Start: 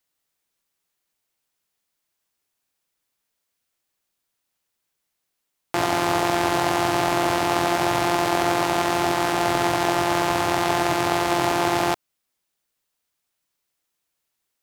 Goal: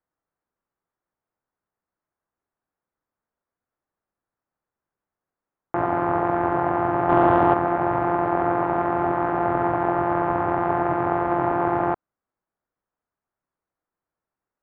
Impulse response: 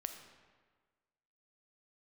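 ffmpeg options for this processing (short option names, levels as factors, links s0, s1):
-filter_complex "[0:a]lowpass=f=1500:w=0.5412,lowpass=f=1500:w=1.3066,asettb=1/sr,asplit=3[s0][s1][s2];[s0]atrim=end=7.094[s3];[s1]atrim=start=7.09:end=7.54,asetpts=PTS-STARTPTS,afade=t=in:d=0.004:c=qsin,afade=t=out:st=0.446:d=0.004:c=qsin,acontrast=54[s4];[s2]atrim=start=7.536[s5];[s3][s4]acrossfade=d=0.004:c1=hsin:c2=qsin[s6];[s6][s5]acrossfade=d=0.004:c1=qsin:c2=hsin"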